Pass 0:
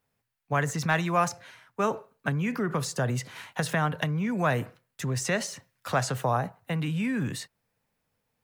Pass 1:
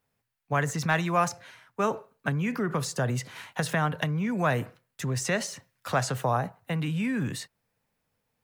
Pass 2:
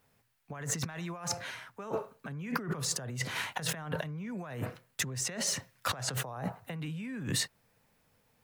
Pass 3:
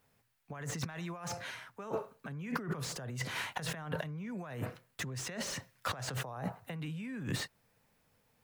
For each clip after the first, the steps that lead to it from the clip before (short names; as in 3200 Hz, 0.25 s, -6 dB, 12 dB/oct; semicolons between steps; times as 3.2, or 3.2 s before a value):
nothing audible
negative-ratio compressor -37 dBFS, ratio -1
slew limiter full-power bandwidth 79 Hz; gain -2 dB